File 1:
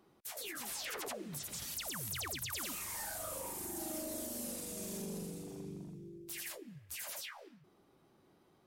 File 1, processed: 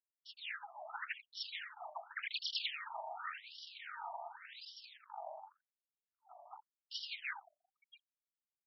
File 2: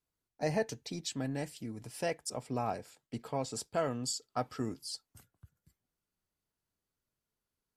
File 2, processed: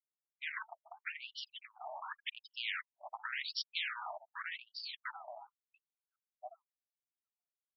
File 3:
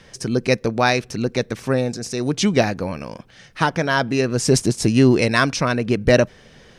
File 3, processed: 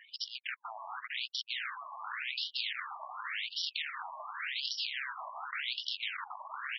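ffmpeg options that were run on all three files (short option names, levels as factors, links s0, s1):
-filter_complex "[0:a]asplit=2[s0][s1];[s1]adelay=689,lowpass=f=3400:p=1,volume=0.282,asplit=2[s2][s3];[s3]adelay=689,lowpass=f=3400:p=1,volume=0.53,asplit=2[s4][s5];[s5]adelay=689,lowpass=f=3400:p=1,volume=0.53,asplit=2[s6][s7];[s7]adelay=689,lowpass=f=3400:p=1,volume=0.53,asplit=2[s8][s9];[s9]adelay=689,lowpass=f=3400:p=1,volume=0.53,asplit=2[s10][s11];[s11]adelay=689,lowpass=f=3400:p=1,volume=0.53[s12];[s0][s2][s4][s6][s8][s10][s12]amix=inputs=7:normalize=0,acompressor=threshold=0.0562:ratio=3,afftfilt=real='re*gte(hypot(re,im),0.00501)':imag='im*gte(hypot(re,im),0.00501)':win_size=1024:overlap=0.75,equalizer=f=6900:t=o:w=2.7:g=-3.5,aeval=exprs='0.2*(cos(1*acos(clip(val(0)/0.2,-1,1)))-cos(1*PI/2))+0.00316*(cos(2*acos(clip(val(0)/0.2,-1,1)))-cos(2*PI/2))+0.0794*(cos(8*acos(clip(val(0)/0.2,-1,1)))-cos(8*PI/2))':c=same,equalizer=f=1100:t=o:w=0.34:g=-13.5,asoftclip=type=tanh:threshold=0.0708,highpass=320,dynaudnorm=f=230:g=9:m=2.82,alimiter=limit=0.126:level=0:latency=1:release=97,afftfilt=real='re*lt(hypot(re,im),0.0501)':imag='im*lt(hypot(re,im),0.0501)':win_size=1024:overlap=0.75,afftfilt=real='re*between(b*sr/1024,820*pow(4100/820,0.5+0.5*sin(2*PI*0.89*pts/sr))/1.41,820*pow(4100/820,0.5+0.5*sin(2*PI*0.89*pts/sr))*1.41)':imag='im*between(b*sr/1024,820*pow(4100/820,0.5+0.5*sin(2*PI*0.89*pts/sr))/1.41,820*pow(4100/820,0.5+0.5*sin(2*PI*0.89*pts/sr))*1.41)':win_size=1024:overlap=0.75,volume=1.68"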